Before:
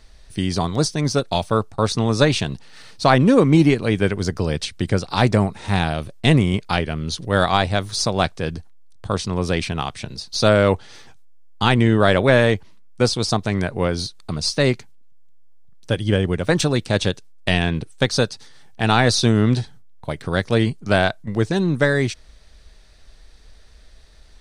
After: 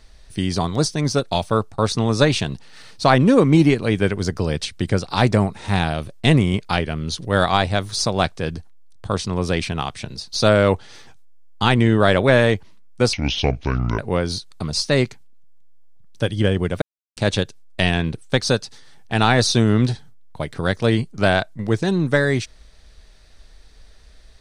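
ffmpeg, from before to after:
ffmpeg -i in.wav -filter_complex "[0:a]asplit=5[link_01][link_02][link_03][link_04][link_05];[link_01]atrim=end=13.134[link_06];[link_02]atrim=start=13.13:end=13.67,asetpts=PTS-STARTPTS,asetrate=27783,aresample=44100[link_07];[link_03]atrim=start=13.666:end=16.5,asetpts=PTS-STARTPTS,afade=type=out:start_time=2.83:duration=0.004:curve=hsin[link_08];[link_04]atrim=start=16.5:end=16.85,asetpts=PTS-STARTPTS,volume=0[link_09];[link_05]atrim=start=16.85,asetpts=PTS-STARTPTS,afade=type=in:duration=0.004:curve=hsin[link_10];[link_06][link_07]acrossfade=duration=0.004:curve1=hsin:curve2=hsin[link_11];[link_08][link_09][link_10]concat=n=3:v=0:a=1[link_12];[link_11][link_12]acrossfade=duration=0.004:curve1=hsin:curve2=hsin" out.wav

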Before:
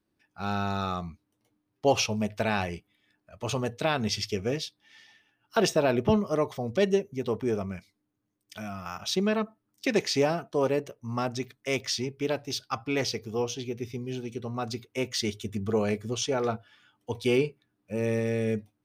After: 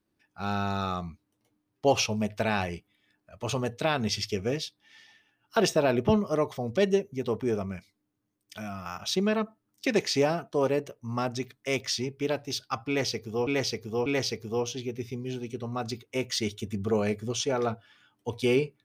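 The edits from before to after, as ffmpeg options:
ffmpeg -i in.wav -filter_complex "[0:a]asplit=3[link_01][link_02][link_03];[link_01]atrim=end=13.472[link_04];[link_02]atrim=start=12.878:end=13.472[link_05];[link_03]atrim=start=12.878[link_06];[link_04][link_05]acrossfade=duration=0.004:curve1=hsin:curve2=hsin[link_07];[link_07][link_06]acrossfade=duration=0.004:curve1=hsin:curve2=hsin" out.wav

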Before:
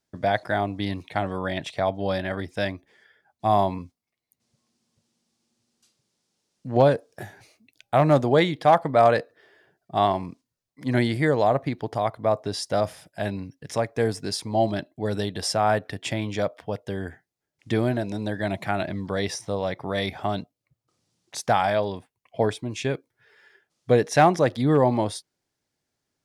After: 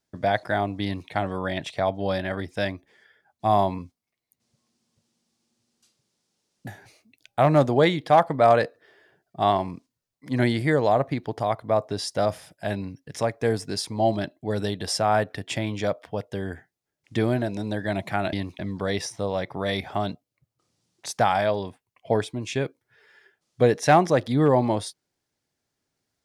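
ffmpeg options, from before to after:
ffmpeg -i in.wav -filter_complex "[0:a]asplit=4[link_01][link_02][link_03][link_04];[link_01]atrim=end=6.672[link_05];[link_02]atrim=start=7.218:end=18.882[link_06];[link_03]atrim=start=0.838:end=1.102[link_07];[link_04]atrim=start=18.878[link_08];[link_05][link_06]acrossfade=duration=0.004:curve1=hsin:curve2=hsin[link_09];[link_09][link_07]acrossfade=duration=0.004:curve1=hsin:curve2=hsin[link_10];[link_10][link_08]acrossfade=duration=0.004:curve1=hsin:curve2=hsin" out.wav

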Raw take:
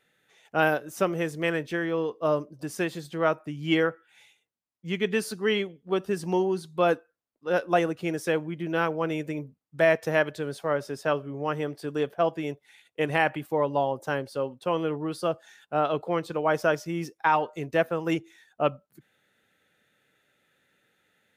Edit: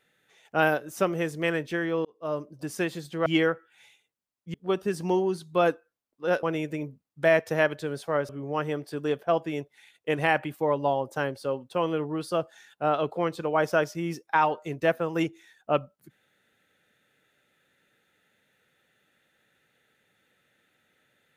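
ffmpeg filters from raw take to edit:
ffmpeg -i in.wav -filter_complex "[0:a]asplit=6[link_01][link_02][link_03][link_04][link_05][link_06];[link_01]atrim=end=2.05,asetpts=PTS-STARTPTS,afade=type=out:start_time=2.046:duration=0.004:curve=hsin[link_07];[link_02]atrim=start=2.05:end=3.262,asetpts=PTS-STARTPTS,afade=type=in:duration=0.51[link_08];[link_03]atrim=start=3.628:end=4.912[link_09];[link_04]atrim=start=5.768:end=7.662[link_10];[link_05]atrim=start=8.988:end=10.852[link_11];[link_06]atrim=start=11.198[link_12];[link_07][link_08]concat=n=2:v=0:a=1[link_13];[link_13][link_09]acrossfade=duration=0.004:curve1=hsin:curve2=hsin[link_14];[link_14][link_10]acrossfade=duration=0.004:curve1=hsin:curve2=hsin[link_15];[link_15][link_11]acrossfade=duration=0.004:curve1=hsin:curve2=hsin[link_16];[link_16][link_12]acrossfade=duration=0.004:curve1=hsin:curve2=hsin" out.wav

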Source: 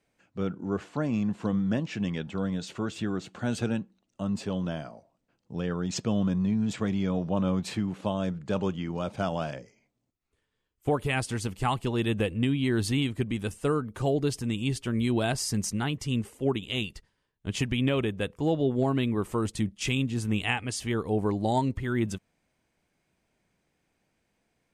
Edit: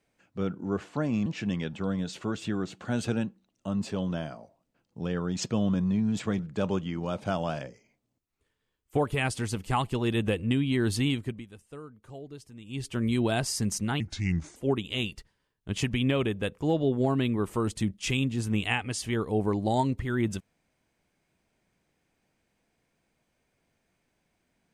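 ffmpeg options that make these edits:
ffmpeg -i in.wav -filter_complex "[0:a]asplit=7[link_01][link_02][link_03][link_04][link_05][link_06][link_07];[link_01]atrim=end=1.262[link_08];[link_02]atrim=start=1.798:end=6.932[link_09];[link_03]atrim=start=8.308:end=13.38,asetpts=PTS-STARTPTS,afade=type=out:start_time=4.742:duration=0.33:silence=0.141254[link_10];[link_04]atrim=start=13.38:end=14.56,asetpts=PTS-STARTPTS,volume=-17dB[link_11];[link_05]atrim=start=14.56:end=15.924,asetpts=PTS-STARTPTS,afade=type=in:duration=0.33:silence=0.141254[link_12];[link_06]atrim=start=15.92:end=16.34,asetpts=PTS-STARTPTS,asetrate=33075,aresample=44100[link_13];[link_07]atrim=start=16.336[link_14];[link_08][link_09]acrossfade=duration=0.004:curve1=hsin:curve2=hsin[link_15];[link_10][link_11][link_12]concat=n=3:v=0:a=1[link_16];[link_15][link_16]acrossfade=duration=0.004:curve1=hsin:curve2=hsin[link_17];[link_17][link_13]acrossfade=duration=0.004:curve1=hsin:curve2=hsin[link_18];[link_18][link_14]acrossfade=duration=0.004:curve1=hsin:curve2=hsin" out.wav

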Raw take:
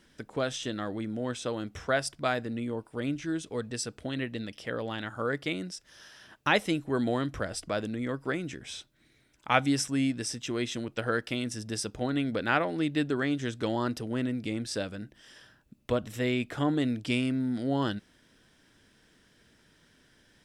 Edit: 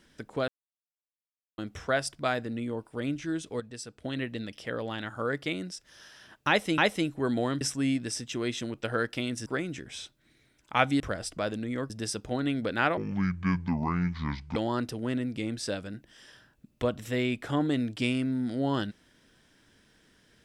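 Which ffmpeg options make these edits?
ffmpeg -i in.wav -filter_complex "[0:a]asplit=12[link_01][link_02][link_03][link_04][link_05][link_06][link_07][link_08][link_09][link_10][link_11][link_12];[link_01]atrim=end=0.48,asetpts=PTS-STARTPTS,afade=type=out:start_time=0.476:duration=0.004:curve=hsin[link_13];[link_02]atrim=start=0.48:end=1.58,asetpts=PTS-STARTPTS,volume=0[link_14];[link_03]atrim=start=1.58:end=3.602,asetpts=PTS-STARTPTS,afade=type=in:duration=0.004:curve=hsin[link_15];[link_04]atrim=start=3.598:end=4.042,asetpts=PTS-STARTPTS,volume=-7dB[link_16];[link_05]atrim=start=4.038:end=6.782[link_17];[link_06]atrim=start=6.478:end=7.312[link_18];[link_07]atrim=start=9.748:end=11.602[link_19];[link_08]atrim=start=8.208:end=9.752[link_20];[link_09]atrim=start=7.308:end=8.212[link_21];[link_10]atrim=start=11.598:end=12.674[link_22];[link_11]atrim=start=12.67:end=13.64,asetpts=PTS-STARTPTS,asetrate=26901,aresample=44100,atrim=end_sample=70126,asetpts=PTS-STARTPTS[link_23];[link_12]atrim=start=13.636[link_24];[link_13][link_14][link_15]concat=n=3:v=0:a=1[link_25];[link_25][link_16]acrossfade=duration=0.004:curve1=hsin:curve2=hsin[link_26];[link_26][link_17]acrossfade=duration=0.004:curve1=hsin:curve2=hsin[link_27];[link_27][link_18]acrossfade=duration=0.004:curve1=hsin:curve2=hsin[link_28];[link_28][link_19]acrossfade=duration=0.004:curve1=hsin:curve2=hsin[link_29];[link_29][link_20]acrossfade=duration=0.004:curve1=hsin:curve2=hsin[link_30];[link_30][link_21]acrossfade=duration=0.004:curve1=hsin:curve2=hsin[link_31];[link_31][link_22]acrossfade=duration=0.004:curve1=hsin:curve2=hsin[link_32];[link_32][link_23]acrossfade=duration=0.004:curve1=hsin:curve2=hsin[link_33];[link_33][link_24]acrossfade=duration=0.004:curve1=hsin:curve2=hsin" out.wav

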